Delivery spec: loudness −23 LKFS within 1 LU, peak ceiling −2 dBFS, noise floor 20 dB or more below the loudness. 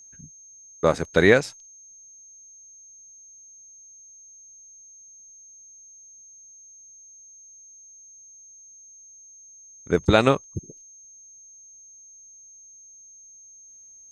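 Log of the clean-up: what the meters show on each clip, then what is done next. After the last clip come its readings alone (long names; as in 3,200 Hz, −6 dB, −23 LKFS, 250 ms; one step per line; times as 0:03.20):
interfering tone 6,400 Hz; level of the tone −46 dBFS; integrated loudness −21.5 LKFS; sample peak −1.5 dBFS; target loudness −23.0 LKFS
→ notch filter 6,400 Hz, Q 30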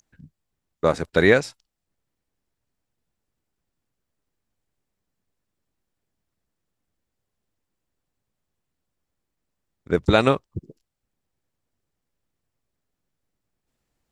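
interfering tone none found; integrated loudness −20.5 LKFS; sample peak −1.5 dBFS; target loudness −23.0 LKFS
→ level −2.5 dB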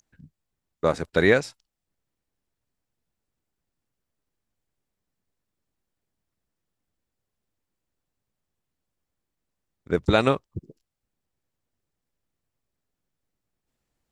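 integrated loudness −23.0 LKFS; sample peak −4.0 dBFS; background noise floor −84 dBFS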